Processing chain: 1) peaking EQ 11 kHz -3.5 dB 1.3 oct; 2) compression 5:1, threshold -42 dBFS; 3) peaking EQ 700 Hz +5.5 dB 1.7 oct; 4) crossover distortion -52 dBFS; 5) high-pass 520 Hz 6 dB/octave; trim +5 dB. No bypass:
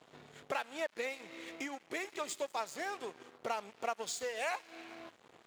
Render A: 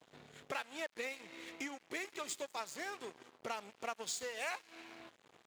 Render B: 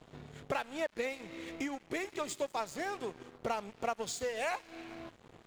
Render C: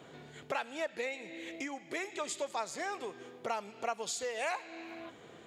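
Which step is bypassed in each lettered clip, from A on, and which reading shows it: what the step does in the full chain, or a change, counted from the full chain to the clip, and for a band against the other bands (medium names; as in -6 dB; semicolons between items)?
3, 500 Hz band -3.5 dB; 5, 125 Hz band +10.5 dB; 4, distortion -13 dB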